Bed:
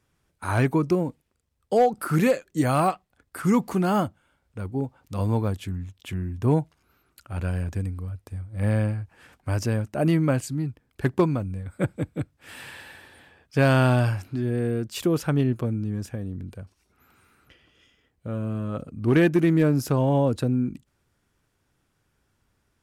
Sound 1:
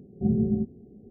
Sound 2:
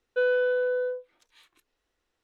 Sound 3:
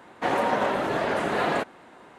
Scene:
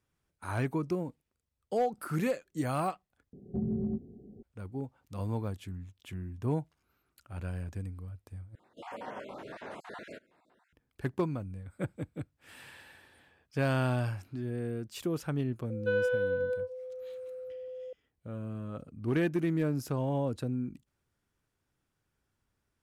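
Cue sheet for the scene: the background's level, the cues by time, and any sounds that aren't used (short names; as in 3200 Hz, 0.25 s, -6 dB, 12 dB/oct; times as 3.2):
bed -10 dB
3.33 replace with 1 -2 dB + compressor, threshold -26 dBFS
8.55 replace with 3 -17.5 dB + random spectral dropouts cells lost 31%
15.7 add 2 -5 dB + whine 510 Hz -34 dBFS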